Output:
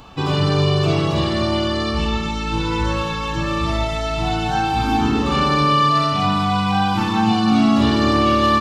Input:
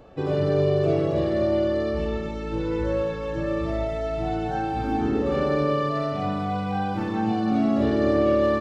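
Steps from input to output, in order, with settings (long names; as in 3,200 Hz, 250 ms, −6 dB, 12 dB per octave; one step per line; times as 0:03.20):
drawn EQ curve 220 Hz 0 dB, 560 Hz −12 dB, 970 Hz +8 dB, 1,800 Hz 0 dB, 2,900 Hz +10 dB
0:05.53–0:06.03: surface crackle 13 per second → 56 per second −42 dBFS
level +8 dB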